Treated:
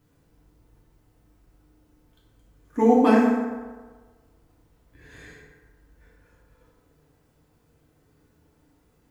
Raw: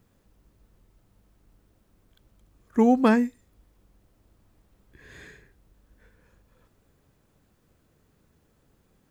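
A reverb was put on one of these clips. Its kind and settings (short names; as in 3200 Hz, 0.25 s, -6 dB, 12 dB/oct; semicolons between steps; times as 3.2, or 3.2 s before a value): FDN reverb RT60 1.4 s, low-frequency decay 0.8×, high-frequency decay 0.55×, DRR -5.5 dB; gain -4.5 dB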